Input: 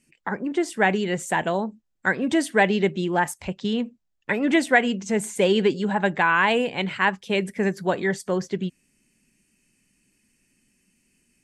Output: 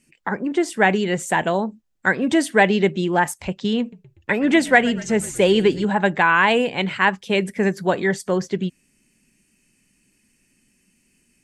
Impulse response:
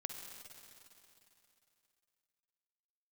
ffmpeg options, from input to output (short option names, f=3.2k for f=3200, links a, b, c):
-filter_complex "[0:a]asettb=1/sr,asplit=3[a][b][c];[a]atrim=end=3.804[d];[b]atrim=start=3.8:end=5.85,asetpts=PTS-STARTPTS,afade=t=in:d=0.004:c=qsin,afade=t=out:st=2.046:d=0.004:c=qsin,asplit=6[e][f][g][h][i][j];[f]adelay=121,afreqshift=-50,volume=-19.5dB[k];[g]adelay=242,afreqshift=-100,volume=-23.9dB[l];[h]adelay=363,afreqshift=-150,volume=-28.4dB[m];[i]adelay=484,afreqshift=-200,volume=-32.8dB[n];[j]adelay=605,afreqshift=-250,volume=-37.2dB[o];[e][k][l][m][n][o]amix=inputs=6:normalize=0,atrim=end_sample=90405[p];[c]atrim=start=5.846[q];[d][p]acrossfade=d=0.004:c1=hsin:c2=qsin[r];[r][q]acrossfade=d=0.004:c1=qsin:c2=hsin,volume=3.5dB"